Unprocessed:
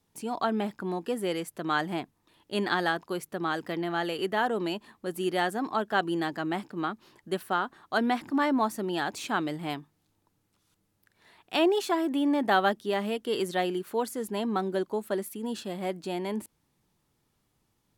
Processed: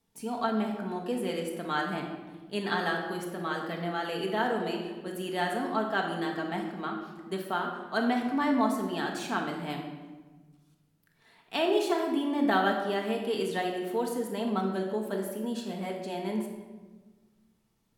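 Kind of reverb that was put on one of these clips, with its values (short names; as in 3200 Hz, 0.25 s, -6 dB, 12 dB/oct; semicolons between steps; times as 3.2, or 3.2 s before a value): shoebox room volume 960 m³, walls mixed, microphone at 1.6 m; gain -4.5 dB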